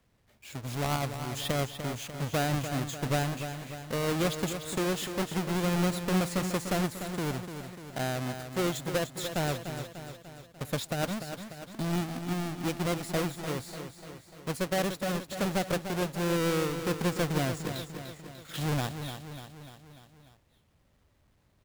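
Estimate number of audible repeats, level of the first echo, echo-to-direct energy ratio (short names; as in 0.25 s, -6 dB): 5, -9.0 dB, -7.5 dB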